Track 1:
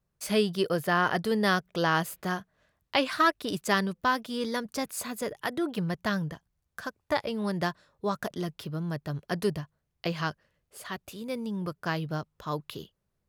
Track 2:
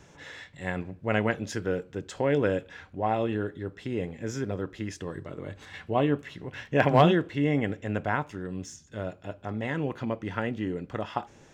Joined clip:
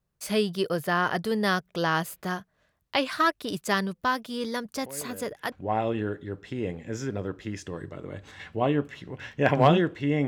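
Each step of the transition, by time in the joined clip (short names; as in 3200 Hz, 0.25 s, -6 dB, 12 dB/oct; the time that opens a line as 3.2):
track 1
4.82 add track 2 from 2.16 s 0.70 s -17.5 dB
5.52 switch to track 2 from 2.86 s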